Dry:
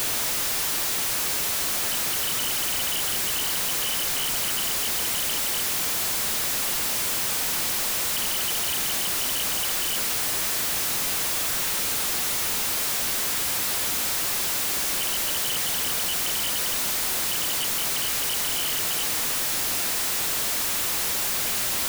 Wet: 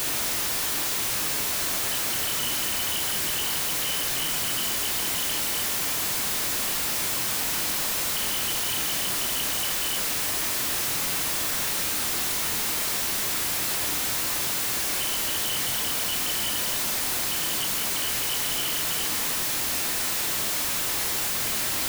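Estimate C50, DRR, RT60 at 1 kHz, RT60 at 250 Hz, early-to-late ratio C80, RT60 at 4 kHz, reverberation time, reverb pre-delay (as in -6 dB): 7.0 dB, 3.5 dB, 0.75 s, 0.85 s, 10.0 dB, 0.40 s, 0.75 s, 19 ms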